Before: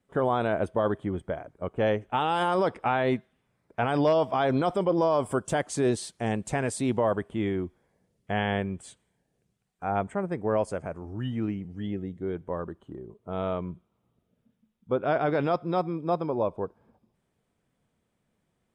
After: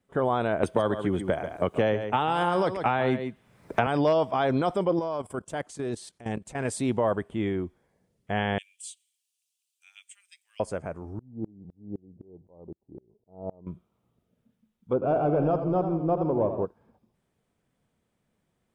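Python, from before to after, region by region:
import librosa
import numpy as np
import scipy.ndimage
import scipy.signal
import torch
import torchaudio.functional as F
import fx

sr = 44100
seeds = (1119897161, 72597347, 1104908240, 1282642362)

y = fx.chain(x, sr, fx.echo_single(ms=138, db=-11.0),
    fx.band_squash(depth_pct=100), at=(0.63, 3.87))
y = fx.chain(y, sr, fx.transient(attack_db=-7, sustain_db=-1),
    fx.level_steps(step_db=15), at=(4.99, 6.65))
y = fx.chain(y, sr, fx.cheby1_highpass(hz=2700.0, order=4),
    fx.high_shelf(hz=3300.0, db=8.5), at=(8.58, 10.6))
y = fx.chain(y, sr, fx.ellip_lowpass(hz=860.0, order=4, stop_db=50),
    fx.tremolo_decay(direction='swelling', hz=3.9, depth_db=30), at=(11.19, 13.67))
y = fx.chain(y, sr, fx.leveller(passes=1),
    fx.moving_average(points=23),
    fx.echo_warbled(ms=84, feedback_pct=63, rate_hz=2.8, cents=83, wet_db=-9.0), at=(14.93, 16.65))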